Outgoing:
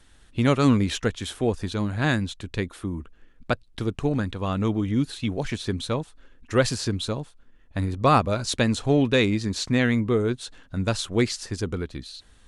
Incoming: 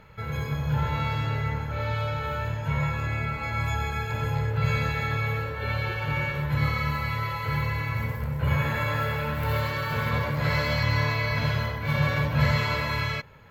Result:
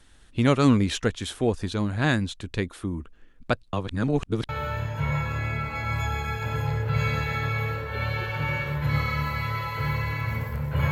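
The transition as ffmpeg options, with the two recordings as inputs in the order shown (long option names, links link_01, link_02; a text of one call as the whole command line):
ffmpeg -i cue0.wav -i cue1.wav -filter_complex "[0:a]apad=whole_dur=10.91,atrim=end=10.91,asplit=2[link_01][link_02];[link_01]atrim=end=3.732[link_03];[link_02]atrim=start=3.728:end=4.492,asetpts=PTS-STARTPTS,areverse[link_04];[1:a]atrim=start=2.168:end=8.59[link_05];[link_03][link_04]acrossfade=duration=0.004:curve1=hsin:curve2=hsin[link_06];[link_06][link_05]acrossfade=duration=0.004:curve1=hsin:curve2=hsin" out.wav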